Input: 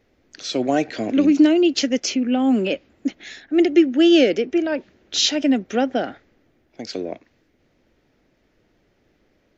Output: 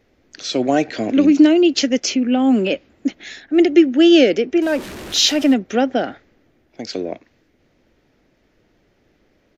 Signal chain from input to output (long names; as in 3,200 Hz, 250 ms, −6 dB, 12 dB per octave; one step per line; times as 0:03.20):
0:04.62–0:05.54: converter with a step at zero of −30.5 dBFS
downsampling to 32,000 Hz
level +3 dB